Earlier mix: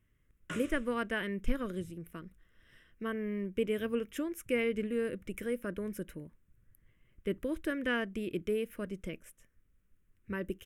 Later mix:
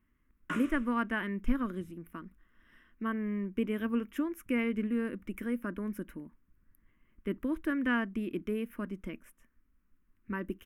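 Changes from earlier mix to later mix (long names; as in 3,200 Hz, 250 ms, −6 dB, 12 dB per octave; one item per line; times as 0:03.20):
background +3.5 dB
master: add octave-band graphic EQ 125/250/500/1,000/4,000/8,000 Hz −11/+10/−9/+8/−6/−8 dB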